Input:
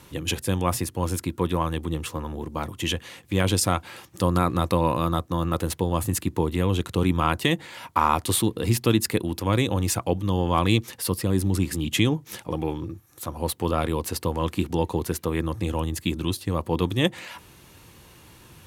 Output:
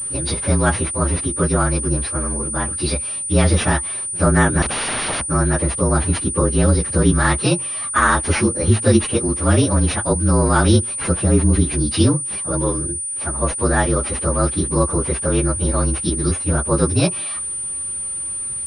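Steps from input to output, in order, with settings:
partials spread apart or drawn together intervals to 117%
0:04.62–0:05.27: wrap-around overflow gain 27.5 dB
switching amplifier with a slow clock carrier 9,300 Hz
level +9 dB

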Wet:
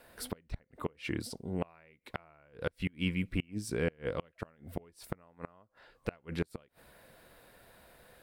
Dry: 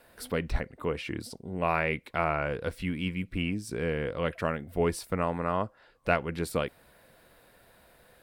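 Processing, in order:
gate with flip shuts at −20 dBFS, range −32 dB

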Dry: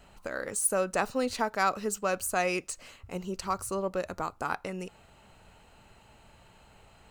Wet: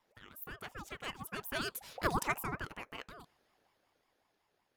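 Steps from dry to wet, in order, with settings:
source passing by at 0:03.09, 10 m/s, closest 1.6 metres
change of speed 1.49×
ring modulator whose carrier an LFO sweeps 700 Hz, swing 40%, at 5.4 Hz
level +7.5 dB

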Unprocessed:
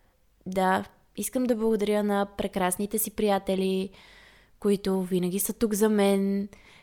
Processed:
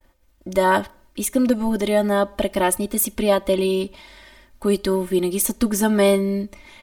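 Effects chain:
comb filter 3.3 ms, depth 98%
downward expander −54 dBFS
level +4.5 dB

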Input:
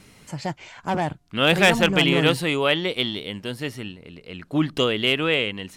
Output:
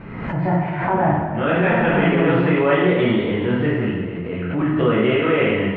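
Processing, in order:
low-pass filter 1,900 Hz 24 dB per octave
reversed playback
downward compressor 6 to 1, threshold −28 dBFS, peak gain reduction 13.5 dB
reversed playback
convolution reverb RT60 1.3 s, pre-delay 4 ms, DRR −8.5 dB
background raised ahead of every attack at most 45 dB per second
level +5 dB

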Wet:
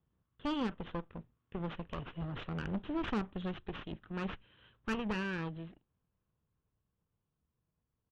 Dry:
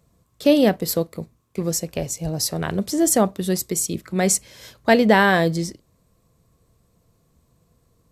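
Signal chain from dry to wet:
lower of the sound and its delayed copy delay 0.67 ms
source passing by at 0:02.46, 9 m/s, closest 11 metres
downsampling to 8,000 Hz
tube saturation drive 21 dB, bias 0.45
level −8 dB

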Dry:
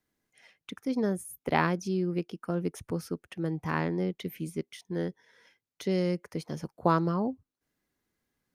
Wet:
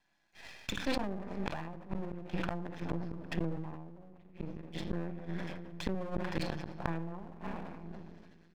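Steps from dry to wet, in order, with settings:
phase distortion by the signal itself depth 0.43 ms
loudspeaker in its box 240–4,900 Hz, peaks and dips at 250 Hz −7 dB, 430 Hz −7 dB, 2,200 Hz +3 dB
comb filter 1.2 ms, depth 86%
rectangular room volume 1,200 cubic metres, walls mixed, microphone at 0.78 metres
treble cut that deepens with the level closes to 530 Hz, closed at −27 dBFS
0:02.85–0:05.95: tilt shelving filter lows +7 dB, about 1,200 Hz
mains-hum notches 60/120/180/240/300/360/420/480 Hz
half-wave rectification
gate with flip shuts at −29 dBFS, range −32 dB
level that may fall only so fast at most 35 dB per second
level +9 dB

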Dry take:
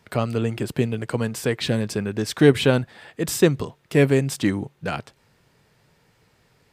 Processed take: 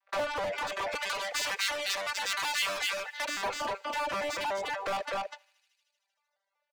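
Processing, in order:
vocoder with an arpeggio as carrier bare fifth, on G3, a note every 187 ms
noise gate −47 dBFS, range −36 dB
single-tap delay 247 ms −10 dB
soft clipping −21.5 dBFS, distortion −6 dB
brickwall limiter −25 dBFS, peak gain reduction 3.5 dB
Butterworth high-pass 480 Hz 96 dB per octave
mid-hump overdrive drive 36 dB, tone 3,500 Hz, clips at −23 dBFS
feedback echo with a high-pass in the loop 77 ms, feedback 80%, high-pass 1,100 Hz, level −14.5 dB
reverb reduction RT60 0.81 s
0:00.95–0:03.26: tilt shelving filter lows −8.5 dB, about 1,400 Hz
level −1 dB

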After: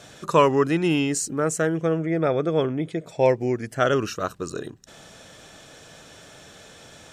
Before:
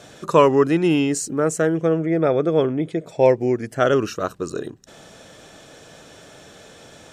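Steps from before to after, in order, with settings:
parametric band 390 Hz −4.5 dB 2.3 octaves

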